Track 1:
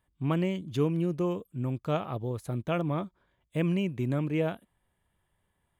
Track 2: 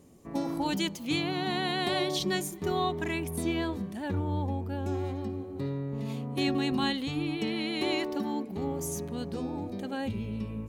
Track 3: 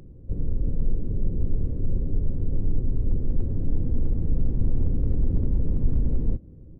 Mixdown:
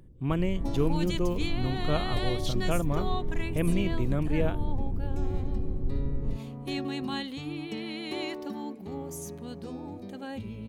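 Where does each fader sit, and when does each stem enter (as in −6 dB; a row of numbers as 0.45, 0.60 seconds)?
−0.5, −4.5, −8.0 decibels; 0.00, 0.30, 0.00 seconds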